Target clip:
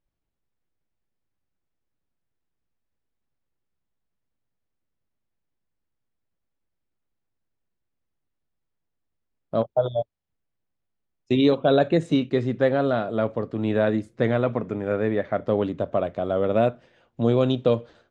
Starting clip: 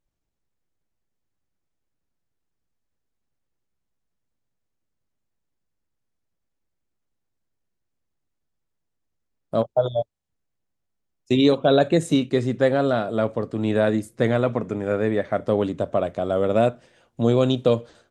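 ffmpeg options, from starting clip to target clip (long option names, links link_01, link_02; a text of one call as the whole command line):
ffmpeg -i in.wav -af "lowpass=3900,volume=-1.5dB" out.wav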